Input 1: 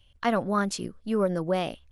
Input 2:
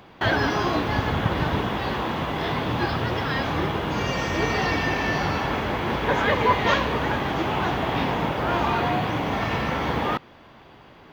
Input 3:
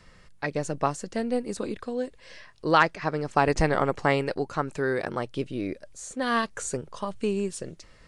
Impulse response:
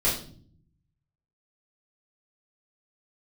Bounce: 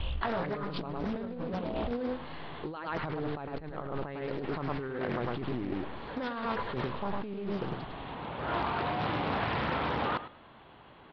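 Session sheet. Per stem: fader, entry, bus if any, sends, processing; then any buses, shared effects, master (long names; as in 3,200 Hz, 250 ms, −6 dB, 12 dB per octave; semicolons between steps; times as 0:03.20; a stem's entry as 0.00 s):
−1.5 dB, 0.00 s, no send, no echo send, low-pass filter 1,100 Hz 6 dB per octave; tuned comb filter 59 Hz, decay 0.29 s, harmonics odd, mix 90%; envelope flattener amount 100%
−7.5 dB, 0.00 s, no send, echo send −14.5 dB, automatic ducking −16 dB, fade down 0.35 s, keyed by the third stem
−5.5 dB, 0.00 s, no send, echo send −5.5 dB, low-shelf EQ 380 Hz +8.5 dB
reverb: not used
echo: repeating echo 104 ms, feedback 16%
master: compressor whose output falls as the input rises −32 dBFS, ratio −1; Chebyshev low-pass with heavy ripple 4,300 Hz, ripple 3 dB; highs frequency-modulated by the lows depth 0.52 ms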